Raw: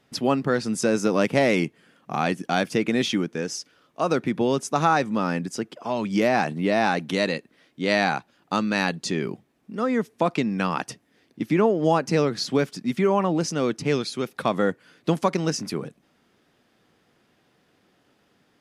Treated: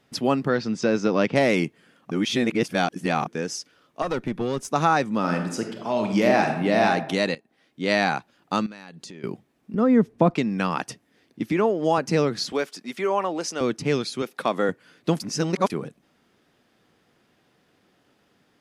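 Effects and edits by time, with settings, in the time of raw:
0.48–1.36 LPF 5400 Hz 24 dB/oct
2.11–3.27 reverse
4.02–4.68 tube stage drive 17 dB, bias 0.6
5.19–6.85 reverb throw, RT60 0.88 s, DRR 3.5 dB
7.35–7.91 fade in, from -17 dB
8.66–9.24 compressor 12:1, threshold -37 dBFS
9.74–10.36 tilt -3.5 dB/oct
11.52–11.98 HPF 260 Hz 6 dB/oct
12.52–13.61 HPF 420 Hz
14.22–14.69 HPF 240 Hz
15.2–15.7 reverse

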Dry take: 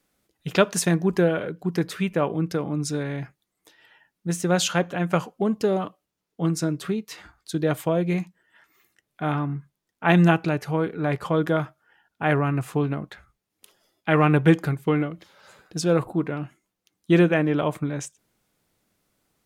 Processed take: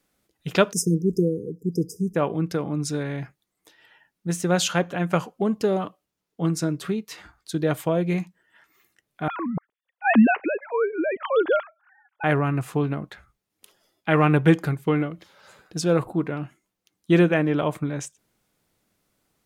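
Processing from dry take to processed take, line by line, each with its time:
0.72–2.15 spectral delete 500–4900 Hz
9.28–12.24 sine-wave speech

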